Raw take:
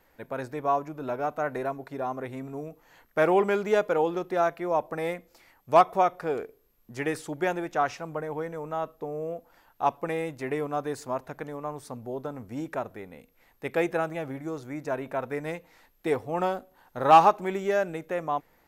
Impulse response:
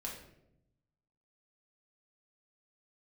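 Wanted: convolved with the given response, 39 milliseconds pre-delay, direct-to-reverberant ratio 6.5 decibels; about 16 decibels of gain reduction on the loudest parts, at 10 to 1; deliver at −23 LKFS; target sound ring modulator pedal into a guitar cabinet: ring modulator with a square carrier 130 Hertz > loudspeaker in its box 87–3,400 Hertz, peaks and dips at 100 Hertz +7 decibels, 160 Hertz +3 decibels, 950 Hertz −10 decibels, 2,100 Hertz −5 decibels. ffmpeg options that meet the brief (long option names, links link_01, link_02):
-filter_complex "[0:a]acompressor=threshold=-28dB:ratio=10,asplit=2[link_01][link_02];[1:a]atrim=start_sample=2205,adelay=39[link_03];[link_02][link_03]afir=irnorm=-1:irlink=0,volume=-6dB[link_04];[link_01][link_04]amix=inputs=2:normalize=0,aeval=exprs='val(0)*sgn(sin(2*PI*130*n/s))':channel_layout=same,highpass=87,equalizer=frequency=100:width_type=q:width=4:gain=7,equalizer=frequency=160:width_type=q:width=4:gain=3,equalizer=frequency=950:width_type=q:width=4:gain=-10,equalizer=frequency=2100:width_type=q:width=4:gain=-5,lowpass=frequency=3400:width=0.5412,lowpass=frequency=3400:width=1.3066,volume=12dB"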